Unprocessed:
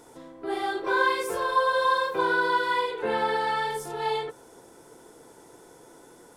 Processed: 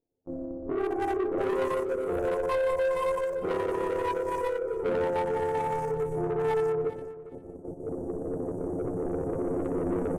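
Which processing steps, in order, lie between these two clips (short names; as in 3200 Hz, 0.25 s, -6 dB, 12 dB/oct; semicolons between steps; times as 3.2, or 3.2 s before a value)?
Wiener smoothing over 41 samples; recorder AGC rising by 9.8 dB/s; inverse Chebyshev band-stop 1700–3500 Hz, stop band 60 dB; gate -45 dBFS, range -40 dB; low shelf 95 Hz +9 dB; in parallel at +0.5 dB: compressor, threshold -38 dBFS, peak gain reduction 14.5 dB; on the sum: de-hum 54.59 Hz, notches 8; soft clip -29 dBFS, distortion -10 dB; on a send: feedback echo 0.253 s, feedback 19%, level -15.5 dB; on the sum: granular stretch 1.6×, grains 60 ms; gain +5.5 dB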